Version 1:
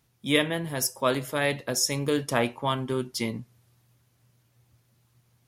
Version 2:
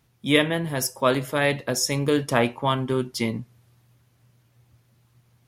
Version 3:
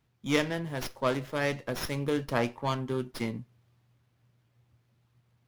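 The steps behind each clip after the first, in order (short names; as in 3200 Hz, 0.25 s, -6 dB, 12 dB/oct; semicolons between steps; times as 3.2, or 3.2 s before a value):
tone controls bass +1 dB, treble -4 dB; gain +4 dB
running maximum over 5 samples; gain -7.5 dB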